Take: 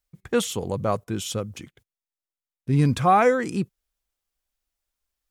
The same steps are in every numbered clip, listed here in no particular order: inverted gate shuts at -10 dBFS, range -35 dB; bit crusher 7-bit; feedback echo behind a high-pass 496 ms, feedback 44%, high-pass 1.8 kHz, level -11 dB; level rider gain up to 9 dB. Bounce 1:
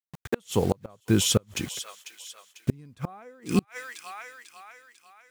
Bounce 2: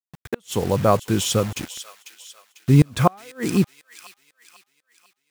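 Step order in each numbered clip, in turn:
level rider > bit crusher > feedback echo behind a high-pass > inverted gate; bit crusher > inverted gate > level rider > feedback echo behind a high-pass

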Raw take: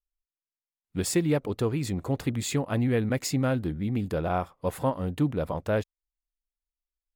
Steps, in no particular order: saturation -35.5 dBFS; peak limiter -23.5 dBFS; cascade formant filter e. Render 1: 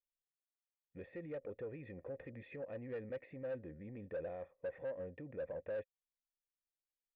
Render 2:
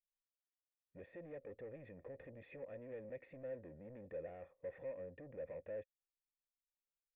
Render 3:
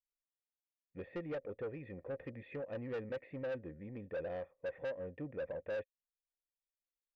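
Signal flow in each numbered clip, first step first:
peak limiter > cascade formant filter > saturation; peak limiter > saturation > cascade formant filter; cascade formant filter > peak limiter > saturation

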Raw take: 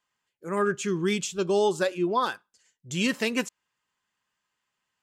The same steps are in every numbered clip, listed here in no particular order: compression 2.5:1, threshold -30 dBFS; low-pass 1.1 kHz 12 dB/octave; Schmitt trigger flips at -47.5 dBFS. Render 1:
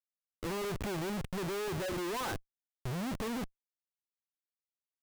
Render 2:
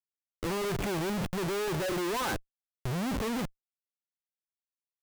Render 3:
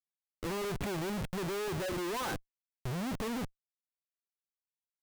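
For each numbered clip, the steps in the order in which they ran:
compression > low-pass > Schmitt trigger; low-pass > Schmitt trigger > compression; low-pass > compression > Schmitt trigger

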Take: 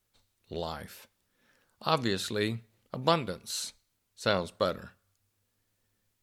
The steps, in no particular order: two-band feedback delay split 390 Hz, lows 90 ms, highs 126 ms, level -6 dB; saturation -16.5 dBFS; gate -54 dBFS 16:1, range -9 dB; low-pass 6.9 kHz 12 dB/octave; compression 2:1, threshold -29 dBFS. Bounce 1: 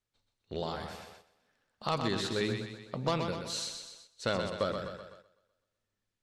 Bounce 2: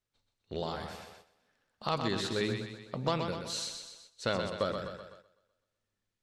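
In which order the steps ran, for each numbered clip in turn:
low-pass > saturation > compression > two-band feedback delay > gate; compression > saturation > two-band feedback delay > gate > low-pass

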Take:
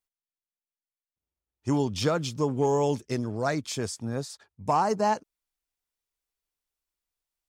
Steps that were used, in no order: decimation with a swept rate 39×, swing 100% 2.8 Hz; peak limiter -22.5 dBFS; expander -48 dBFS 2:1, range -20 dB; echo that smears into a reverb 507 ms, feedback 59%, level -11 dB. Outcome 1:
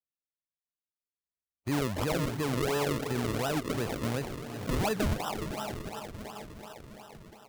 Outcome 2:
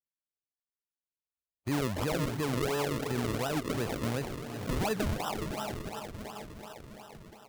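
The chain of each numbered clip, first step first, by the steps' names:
expander > echo that smears into a reverb > decimation with a swept rate > peak limiter; expander > echo that smears into a reverb > peak limiter > decimation with a swept rate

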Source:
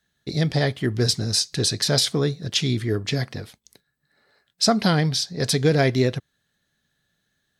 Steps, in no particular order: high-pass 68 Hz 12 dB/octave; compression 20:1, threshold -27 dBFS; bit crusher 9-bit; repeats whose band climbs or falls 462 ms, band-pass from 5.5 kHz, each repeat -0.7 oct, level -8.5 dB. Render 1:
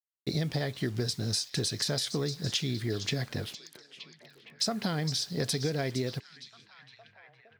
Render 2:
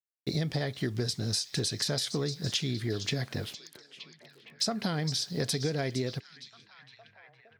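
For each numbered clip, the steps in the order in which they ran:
high-pass > compression > bit crusher > repeats whose band climbs or falls; bit crusher > high-pass > compression > repeats whose band climbs or falls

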